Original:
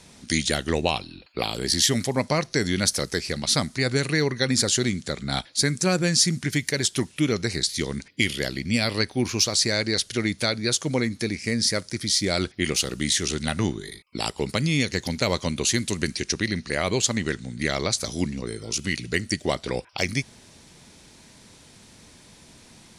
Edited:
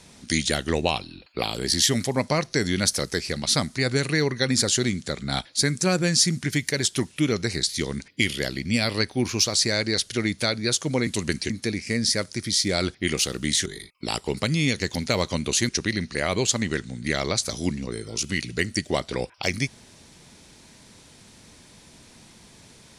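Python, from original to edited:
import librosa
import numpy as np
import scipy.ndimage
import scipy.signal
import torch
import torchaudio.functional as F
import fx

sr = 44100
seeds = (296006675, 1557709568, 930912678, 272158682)

y = fx.edit(x, sr, fx.cut(start_s=13.23, length_s=0.55),
    fx.move(start_s=15.81, length_s=0.43, to_s=11.07), tone=tone)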